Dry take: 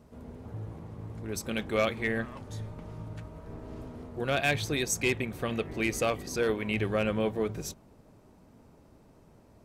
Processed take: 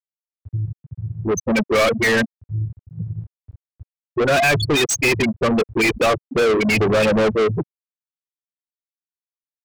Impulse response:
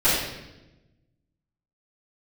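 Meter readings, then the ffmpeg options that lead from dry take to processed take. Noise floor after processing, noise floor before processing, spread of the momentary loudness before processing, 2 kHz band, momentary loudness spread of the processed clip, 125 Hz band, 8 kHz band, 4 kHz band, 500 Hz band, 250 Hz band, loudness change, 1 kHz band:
under -85 dBFS, -58 dBFS, 15 LU, +12.5 dB, 14 LU, +11.0 dB, +9.5 dB, +12.0 dB, +12.5 dB, +12.0 dB, +12.5 dB, +13.0 dB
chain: -filter_complex "[0:a]afftfilt=real='re*gte(hypot(re,im),0.0891)':imag='im*gte(hypot(re,im),0.0891)':win_size=1024:overlap=0.75,asplit=2[a][b];[b]highpass=f=720:p=1,volume=33dB,asoftclip=type=tanh:threshold=-16.5dB[c];[a][c]amix=inputs=2:normalize=0,lowpass=f=5.4k:p=1,volume=-6dB,volume=6.5dB"

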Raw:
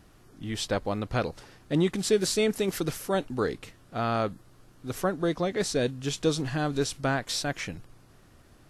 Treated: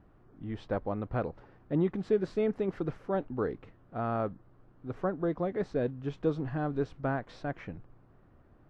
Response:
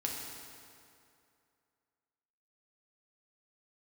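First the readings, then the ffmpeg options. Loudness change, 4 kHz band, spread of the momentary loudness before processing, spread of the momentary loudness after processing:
-4.5 dB, under -20 dB, 12 LU, 13 LU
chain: -af "lowpass=1.3k,volume=-3.5dB"

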